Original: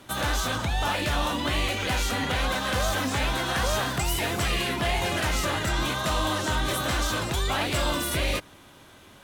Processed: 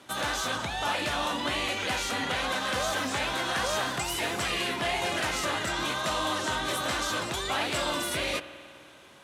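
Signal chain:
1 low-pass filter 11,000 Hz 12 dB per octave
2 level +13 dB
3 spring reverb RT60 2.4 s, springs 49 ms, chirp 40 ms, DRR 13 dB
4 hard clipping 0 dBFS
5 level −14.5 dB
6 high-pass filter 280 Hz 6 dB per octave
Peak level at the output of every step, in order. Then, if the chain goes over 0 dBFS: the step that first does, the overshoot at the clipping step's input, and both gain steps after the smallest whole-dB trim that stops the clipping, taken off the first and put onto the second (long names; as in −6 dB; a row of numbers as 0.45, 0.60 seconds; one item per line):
−17.5, −4.5, −3.0, −3.0, −17.5, −16.5 dBFS
no step passes full scale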